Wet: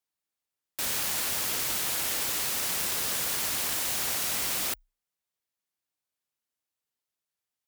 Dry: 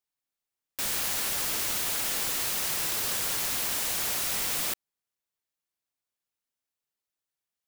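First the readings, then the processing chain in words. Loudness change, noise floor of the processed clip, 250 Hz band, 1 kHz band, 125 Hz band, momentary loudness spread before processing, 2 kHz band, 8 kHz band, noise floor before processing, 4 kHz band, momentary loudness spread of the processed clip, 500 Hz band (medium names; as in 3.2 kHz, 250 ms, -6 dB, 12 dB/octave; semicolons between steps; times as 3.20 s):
0.0 dB, under -85 dBFS, 0.0 dB, 0.0 dB, 0.0 dB, 3 LU, 0.0 dB, 0.0 dB, under -85 dBFS, 0.0 dB, 3 LU, 0.0 dB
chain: Chebyshev shaper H 2 -10 dB, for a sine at -16 dBFS; frequency shift +30 Hz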